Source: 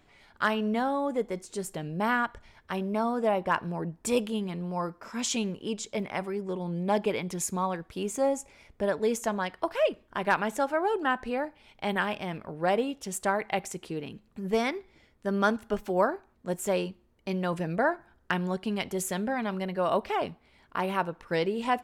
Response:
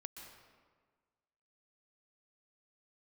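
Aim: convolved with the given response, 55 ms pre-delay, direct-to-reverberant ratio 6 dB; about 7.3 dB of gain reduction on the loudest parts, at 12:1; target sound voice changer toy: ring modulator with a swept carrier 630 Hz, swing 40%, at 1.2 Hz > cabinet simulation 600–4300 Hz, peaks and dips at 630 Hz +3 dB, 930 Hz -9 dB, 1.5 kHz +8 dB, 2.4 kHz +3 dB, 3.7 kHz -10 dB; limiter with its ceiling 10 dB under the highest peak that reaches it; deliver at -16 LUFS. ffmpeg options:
-filter_complex "[0:a]acompressor=threshold=0.0447:ratio=12,alimiter=level_in=1.06:limit=0.0631:level=0:latency=1,volume=0.944,asplit=2[s0][s1];[1:a]atrim=start_sample=2205,adelay=55[s2];[s1][s2]afir=irnorm=-1:irlink=0,volume=0.841[s3];[s0][s3]amix=inputs=2:normalize=0,aeval=exprs='val(0)*sin(2*PI*630*n/s+630*0.4/1.2*sin(2*PI*1.2*n/s))':c=same,highpass=600,equalizer=f=630:t=q:w=4:g=3,equalizer=f=930:t=q:w=4:g=-9,equalizer=f=1500:t=q:w=4:g=8,equalizer=f=2400:t=q:w=4:g=3,equalizer=f=3700:t=q:w=4:g=-10,lowpass=f=4300:w=0.5412,lowpass=f=4300:w=1.3066,volume=12.6"

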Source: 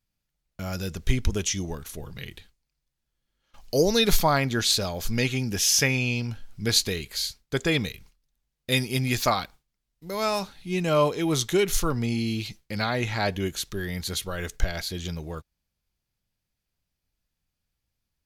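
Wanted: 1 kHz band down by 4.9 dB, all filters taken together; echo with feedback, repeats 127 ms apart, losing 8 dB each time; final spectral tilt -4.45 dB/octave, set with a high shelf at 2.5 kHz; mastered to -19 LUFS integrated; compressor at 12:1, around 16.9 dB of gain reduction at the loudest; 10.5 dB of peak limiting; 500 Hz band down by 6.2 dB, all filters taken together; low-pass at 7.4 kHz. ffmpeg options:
-af "lowpass=7400,equalizer=f=500:t=o:g=-7,equalizer=f=1000:t=o:g=-3.5,highshelf=f=2500:g=-3.5,acompressor=threshold=0.0251:ratio=12,alimiter=level_in=2.11:limit=0.0631:level=0:latency=1,volume=0.473,aecho=1:1:127|254|381|508|635:0.398|0.159|0.0637|0.0255|0.0102,volume=11.2"

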